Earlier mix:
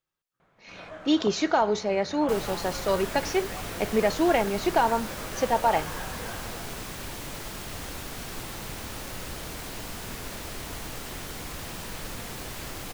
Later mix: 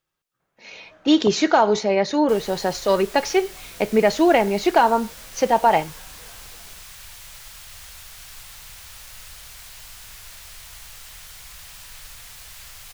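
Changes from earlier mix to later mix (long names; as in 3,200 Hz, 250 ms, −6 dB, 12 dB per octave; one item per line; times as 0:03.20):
speech +6.5 dB
first sound −10.5 dB
second sound: add guitar amp tone stack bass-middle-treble 10-0-10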